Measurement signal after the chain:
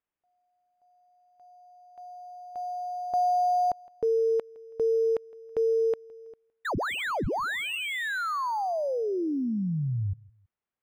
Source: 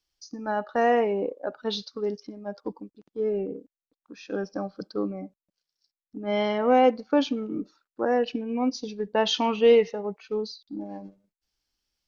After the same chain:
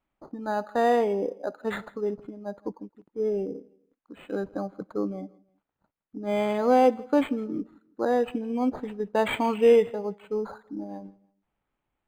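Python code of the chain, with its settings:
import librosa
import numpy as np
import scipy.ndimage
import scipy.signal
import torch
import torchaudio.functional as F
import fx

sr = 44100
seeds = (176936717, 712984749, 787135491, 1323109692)

y = fx.echo_feedback(x, sr, ms=163, feedback_pct=34, wet_db=-24.0)
y = np.interp(np.arange(len(y)), np.arange(len(y))[::8], y[::8])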